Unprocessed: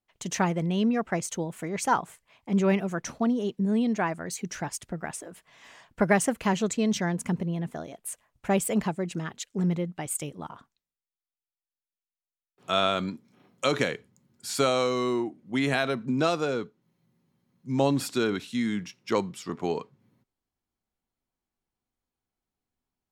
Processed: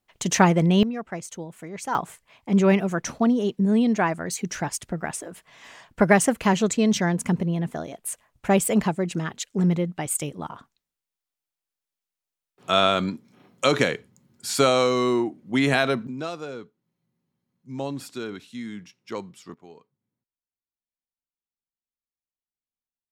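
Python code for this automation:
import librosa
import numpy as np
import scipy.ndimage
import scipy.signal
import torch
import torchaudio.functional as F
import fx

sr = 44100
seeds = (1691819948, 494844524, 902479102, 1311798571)

y = fx.gain(x, sr, db=fx.steps((0.0, 8.5), (0.83, -4.5), (1.95, 5.0), (16.07, -7.0), (19.54, -18.5)))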